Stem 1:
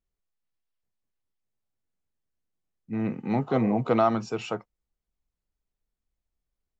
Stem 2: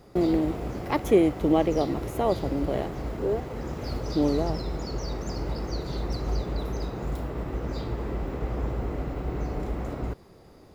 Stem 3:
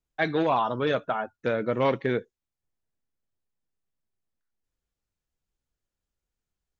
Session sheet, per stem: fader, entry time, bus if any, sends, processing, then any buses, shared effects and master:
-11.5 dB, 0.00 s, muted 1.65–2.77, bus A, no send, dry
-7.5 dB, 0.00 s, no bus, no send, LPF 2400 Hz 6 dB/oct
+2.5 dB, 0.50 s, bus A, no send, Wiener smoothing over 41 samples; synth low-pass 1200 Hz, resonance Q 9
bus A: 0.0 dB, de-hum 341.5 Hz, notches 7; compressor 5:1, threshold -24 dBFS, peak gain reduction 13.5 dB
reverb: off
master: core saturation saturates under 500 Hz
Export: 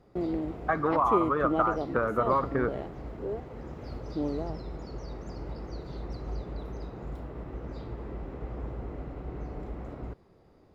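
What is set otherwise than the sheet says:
stem 1: muted; stem 3: missing Wiener smoothing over 41 samples; master: missing core saturation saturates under 500 Hz

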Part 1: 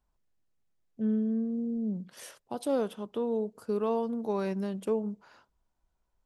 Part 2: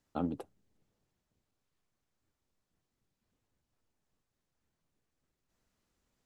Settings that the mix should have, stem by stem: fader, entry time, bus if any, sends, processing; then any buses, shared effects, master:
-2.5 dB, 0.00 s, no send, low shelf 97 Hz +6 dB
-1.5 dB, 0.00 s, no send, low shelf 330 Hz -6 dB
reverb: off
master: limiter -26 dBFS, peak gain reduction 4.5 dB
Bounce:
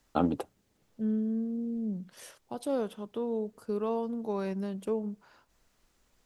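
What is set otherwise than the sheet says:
stem 2 -1.5 dB -> +10.5 dB; master: missing limiter -26 dBFS, peak gain reduction 4.5 dB

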